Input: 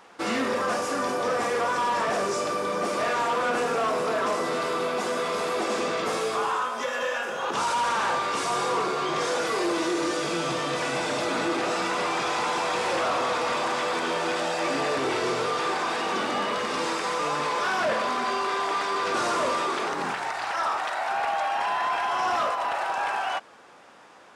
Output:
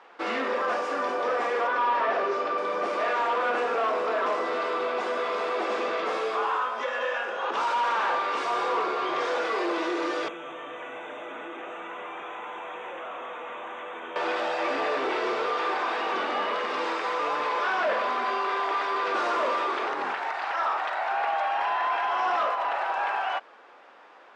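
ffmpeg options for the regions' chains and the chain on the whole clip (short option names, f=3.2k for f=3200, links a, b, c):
-filter_complex "[0:a]asettb=1/sr,asplit=3[a][b][c];[a]atrim=end=1.674[d];[b]atrim=start=1.67:end=2.58,asetpts=PTS-STARTPTS,afade=t=in:d=0.004:c=qsin,afade=t=out:st=0.906:d=0.004:c=qsin,lowpass=4.1k,aecho=1:1:7.5:0.4,atrim=end_sample=40131[e];[c]atrim=start=2.576[f];[d][e]acrossfade=d=0.004:c1=hsin:c2=qsin[g];[g][f]acrossfade=d=0.004:c1=qsin:c2=hsin,asettb=1/sr,asplit=3[h][i][j];[h]atrim=end=10.284[k];[i]atrim=start=10.28:end=14.16,asetpts=PTS-STARTPTS,afade=t=in:d=0.004:c=qsin,afade=t=out:st=3.876:d=0.004:c=qsin,equalizer=f=8.4k:w=0.41:g=-6,acrossover=split=180|1900[l][m][n];[l]acompressor=threshold=-51dB:ratio=4[o];[m]acompressor=threshold=-38dB:ratio=4[p];[n]acompressor=threshold=-44dB:ratio=4[q];[o][p][q]amix=inputs=3:normalize=0,asuperstop=centerf=4700:order=12:qfactor=2[r];[j]atrim=start=14.156[s];[k][r]acrossfade=d=0.004:c1=hsin:c2=qsin[t];[t][s]acrossfade=d=0.004:c1=qsin:c2=hsin,lowpass=7.2k,acrossover=split=290 3700:gain=0.0708 1 0.2[u][v][w];[u][v][w]amix=inputs=3:normalize=0"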